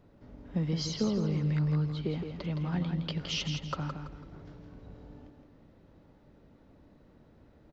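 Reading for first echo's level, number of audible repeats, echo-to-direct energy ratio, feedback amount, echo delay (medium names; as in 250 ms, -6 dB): -6.5 dB, 3, -6.0 dB, 33%, 166 ms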